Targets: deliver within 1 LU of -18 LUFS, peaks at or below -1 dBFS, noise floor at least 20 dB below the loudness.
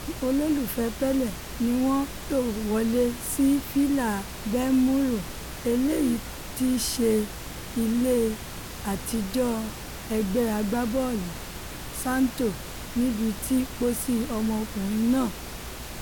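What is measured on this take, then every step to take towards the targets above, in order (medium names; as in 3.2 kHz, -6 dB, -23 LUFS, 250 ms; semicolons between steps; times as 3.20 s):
hum 60 Hz; highest harmonic 360 Hz; hum level -42 dBFS; noise floor -38 dBFS; noise floor target -47 dBFS; loudness -26.5 LUFS; peak level -12.5 dBFS; loudness target -18.0 LUFS
-> de-hum 60 Hz, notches 6; noise print and reduce 9 dB; trim +8.5 dB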